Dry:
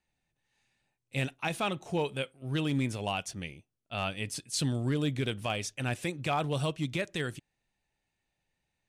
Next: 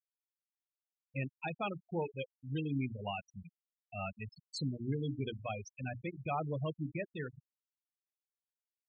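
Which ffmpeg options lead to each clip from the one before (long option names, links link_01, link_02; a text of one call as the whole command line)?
ffmpeg -i in.wav -af "bandreject=frequency=60:width_type=h:width=6,bandreject=frequency=120:width_type=h:width=6,bandreject=frequency=180:width_type=h:width=6,bandreject=frequency=240:width_type=h:width=6,bandreject=frequency=300:width_type=h:width=6,bandreject=frequency=360:width_type=h:width=6,bandreject=frequency=420:width_type=h:width=6,afftfilt=real='re*gte(hypot(re,im),0.0631)':imag='im*gte(hypot(re,im),0.0631)':win_size=1024:overlap=0.75,volume=-5dB" out.wav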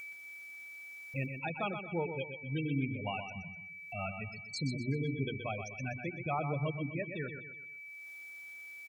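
ffmpeg -i in.wav -filter_complex "[0:a]acompressor=mode=upward:threshold=-41dB:ratio=2.5,aeval=exprs='val(0)+0.00631*sin(2*PI*2300*n/s)':channel_layout=same,asplit=2[link_01][link_02];[link_02]aecho=0:1:125|250|375|500:0.398|0.151|0.0575|0.0218[link_03];[link_01][link_03]amix=inputs=2:normalize=0,volume=1dB" out.wav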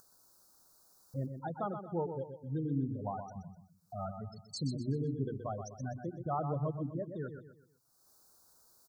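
ffmpeg -i in.wav -af "asuperstop=centerf=2500:order=8:qfactor=0.9" out.wav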